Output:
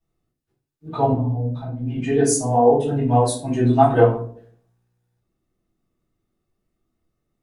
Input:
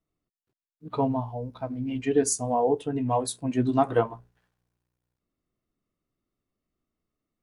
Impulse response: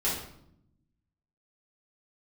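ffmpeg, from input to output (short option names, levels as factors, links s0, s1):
-filter_complex "[0:a]asettb=1/sr,asplit=3[s0][s1][s2];[s0]atrim=end=1.124[s3];[s1]atrim=start=1.12:end=1.98,asetpts=PTS-STARTPTS,afade=t=in:d=0.004:c=qsin,afade=t=out:st=0.856:d=0.004:c=qsin,acrossover=split=340[s4][s5];[s5]acompressor=threshold=0.00708:ratio=10[s6];[s4][s6]amix=inputs=2:normalize=0[s7];[s2]atrim=start=1.976[s8];[s3][s7]acrossfade=d=0.004:c1=hsin:c2=qsin[s9];[s9][s8]acrossfade=d=0.004:c1=qsin:c2=hsin[s10];[1:a]atrim=start_sample=2205,asetrate=83790,aresample=44100[s11];[s10][s11]afir=irnorm=-1:irlink=0,volume=1.33"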